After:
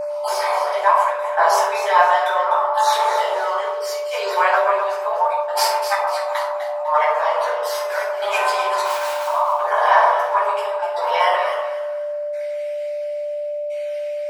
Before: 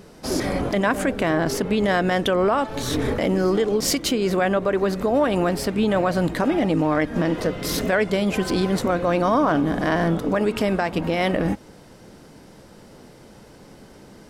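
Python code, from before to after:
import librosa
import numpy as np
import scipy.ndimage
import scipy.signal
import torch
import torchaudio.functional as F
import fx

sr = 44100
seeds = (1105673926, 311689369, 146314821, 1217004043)

p1 = fx.spec_dropout(x, sr, seeds[0], share_pct=23)
p2 = fx.over_compress(p1, sr, threshold_db=-30.0, ratio=-1.0, at=(5.25, 6.94))
p3 = fx.brickwall_highpass(p2, sr, low_hz=390.0)
p4 = fx.overflow_wrap(p3, sr, gain_db=26.0, at=(8.85, 9.27))
p5 = fx.tremolo_shape(p4, sr, shape='saw_down', hz=0.73, depth_pct=95)
p6 = fx.filter_sweep_highpass(p5, sr, from_hz=940.0, to_hz=2300.0, start_s=11.18, end_s=12.61, q=5.2)
p7 = p6 + fx.echo_alternate(p6, sr, ms=125, hz=1300.0, feedback_pct=54, wet_db=-4, dry=0)
p8 = fx.room_shoebox(p7, sr, seeds[1], volume_m3=630.0, walls='furnished', distance_m=8.1)
p9 = p8 + 10.0 ** (-19.0 / 20.0) * np.sin(2.0 * np.pi * 590.0 * np.arange(len(p8)) / sr)
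y = p9 * 10.0 ** (-3.5 / 20.0)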